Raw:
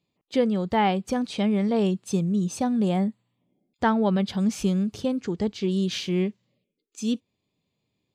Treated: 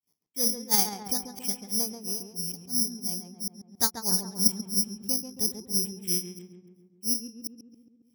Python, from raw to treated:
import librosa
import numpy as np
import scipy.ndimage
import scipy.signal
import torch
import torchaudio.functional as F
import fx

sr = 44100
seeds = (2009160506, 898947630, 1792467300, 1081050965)

p1 = fx.reverse_delay(x, sr, ms=216, wet_db=-8.5)
p2 = fx.peak_eq(p1, sr, hz=570.0, db=-12.5, octaves=0.23)
p3 = fx.level_steps(p2, sr, step_db=20)
p4 = p2 + (p3 * librosa.db_to_amplitude(1.0))
p5 = fx.granulator(p4, sr, seeds[0], grain_ms=248.0, per_s=3.0, spray_ms=100.0, spread_st=0)
p6 = (np.kron(scipy.signal.resample_poly(p5, 1, 8), np.eye(8)[0]) * 8)[:len(p5)]
p7 = p6 + fx.echo_filtered(p6, sr, ms=137, feedback_pct=63, hz=1900.0, wet_db=-6.0, dry=0)
y = p7 * librosa.db_to_amplitude(-11.0)